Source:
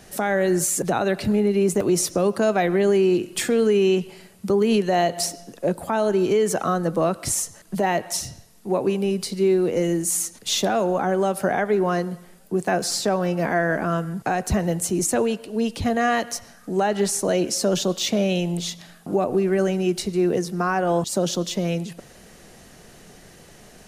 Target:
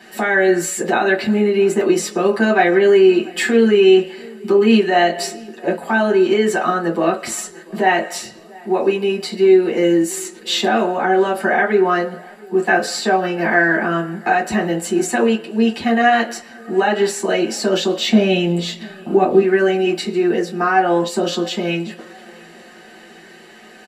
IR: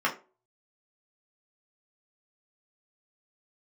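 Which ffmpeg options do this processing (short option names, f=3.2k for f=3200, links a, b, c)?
-filter_complex "[0:a]asettb=1/sr,asplit=3[a][b][c];[a]atrim=end=18.084[d];[b]atrim=start=18.08:end=19.42,asetpts=PTS-STARTPTS,afade=t=in:d=0.004:c=qsin,afade=t=out:st=1.336:d=0.004:c=qsin,lowshelf=f=220:g=11[e];[c]atrim=start=19.416[f];[d][e]acrossfade=d=0.004:c1=hsin:c2=qsin[g];[g][f]acrossfade=d=0.004:c1=qsin:c2=hsin,asplit=2[h][i];[i]adelay=687,lowpass=f=2.2k:p=1,volume=-24dB,asplit=2[j][k];[k]adelay=687,lowpass=f=2.2k:p=1,volume=0.54,asplit=2[l][m];[m]adelay=687,lowpass=f=2.2k:p=1,volume=0.54[n];[h][j][l][n]amix=inputs=4:normalize=0[o];[1:a]atrim=start_sample=2205,asetrate=61740,aresample=44100[p];[o][p]afir=irnorm=-1:irlink=0,volume=-1dB"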